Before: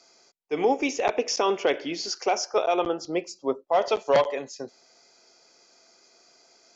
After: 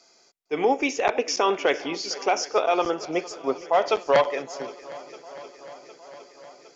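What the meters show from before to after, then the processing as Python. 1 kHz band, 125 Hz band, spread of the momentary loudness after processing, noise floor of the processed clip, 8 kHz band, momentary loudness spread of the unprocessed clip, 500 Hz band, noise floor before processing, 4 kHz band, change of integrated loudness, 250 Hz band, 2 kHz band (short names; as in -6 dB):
+2.5 dB, 0.0 dB, 20 LU, -59 dBFS, n/a, 10 LU, +1.0 dB, -60 dBFS, +1.0 dB, +1.5 dB, +0.5 dB, +4.0 dB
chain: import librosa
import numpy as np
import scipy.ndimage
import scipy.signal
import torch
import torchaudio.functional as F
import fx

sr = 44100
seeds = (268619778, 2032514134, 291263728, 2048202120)

y = fx.dynamic_eq(x, sr, hz=1600.0, q=0.82, threshold_db=-37.0, ratio=4.0, max_db=5)
y = fx.echo_swing(y, sr, ms=760, ratio=1.5, feedback_pct=63, wet_db=-19)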